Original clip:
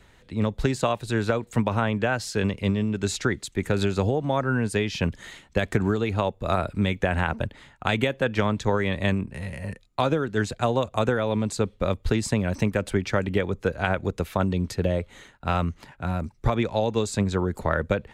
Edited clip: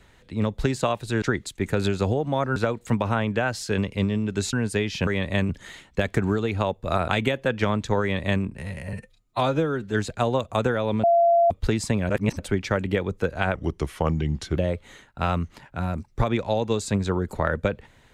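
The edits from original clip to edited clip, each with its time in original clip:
3.19–4.53 move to 1.22
6.66–7.84 cut
8.77–9.19 copy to 5.07
9.69–10.36 stretch 1.5×
11.46–11.93 bleep 683 Hz -14.5 dBFS
12.52–12.82 reverse
13.97–14.83 speed 84%

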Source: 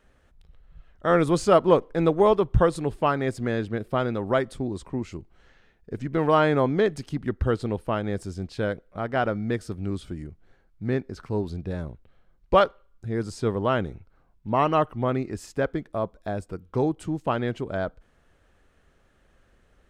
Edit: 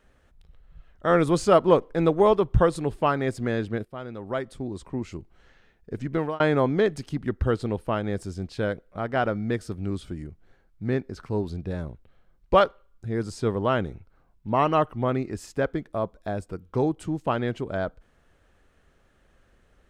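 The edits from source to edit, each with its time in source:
3.85–5.14 fade in linear, from -16 dB
6.14–6.4 fade out

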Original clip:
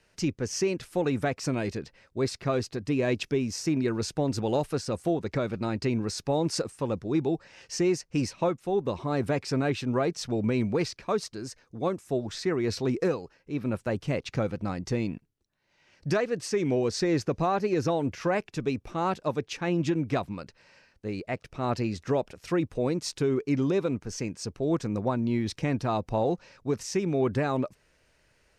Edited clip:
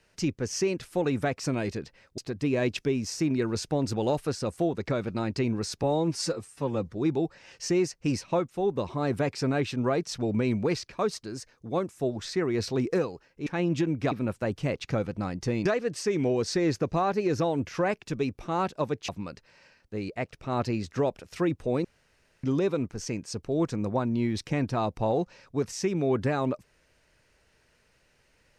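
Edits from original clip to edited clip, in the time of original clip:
2.18–2.64 cut
6.29–7.02 stretch 1.5×
15.1–16.12 cut
19.55–20.2 move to 13.56
22.96–23.55 room tone

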